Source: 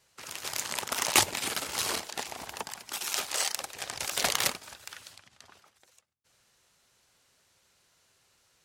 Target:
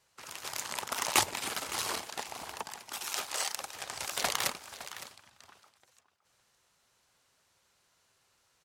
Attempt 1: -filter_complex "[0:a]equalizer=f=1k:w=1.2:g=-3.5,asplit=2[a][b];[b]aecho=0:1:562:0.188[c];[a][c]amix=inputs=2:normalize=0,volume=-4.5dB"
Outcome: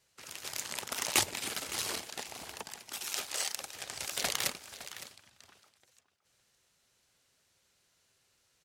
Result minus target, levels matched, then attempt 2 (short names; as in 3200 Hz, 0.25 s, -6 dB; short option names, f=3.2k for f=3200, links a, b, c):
1000 Hz band -5.5 dB
-filter_complex "[0:a]equalizer=f=1k:w=1.2:g=4,asplit=2[a][b];[b]aecho=0:1:562:0.188[c];[a][c]amix=inputs=2:normalize=0,volume=-4.5dB"